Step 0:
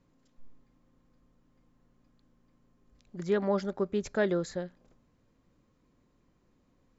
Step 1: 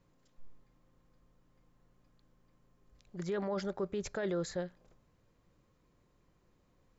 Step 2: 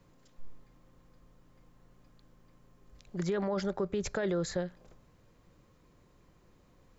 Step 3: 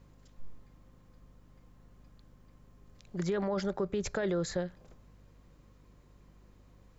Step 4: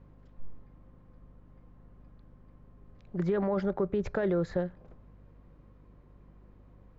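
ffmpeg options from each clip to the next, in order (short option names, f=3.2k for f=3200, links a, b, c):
-af "equalizer=f=250:w=2.9:g=-8.5,alimiter=level_in=3dB:limit=-24dB:level=0:latency=1:release=10,volume=-3dB"
-filter_complex "[0:a]acrossover=split=140[a][b];[b]acompressor=threshold=-40dB:ratio=2[c];[a][c]amix=inputs=2:normalize=0,volume=7.5dB"
-af "aeval=exprs='val(0)+0.00112*(sin(2*PI*50*n/s)+sin(2*PI*2*50*n/s)/2+sin(2*PI*3*50*n/s)/3+sin(2*PI*4*50*n/s)/4+sin(2*PI*5*50*n/s)/5)':c=same"
-af "adynamicsmooth=sensitivity=0.5:basefreq=2k,volume=3.5dB"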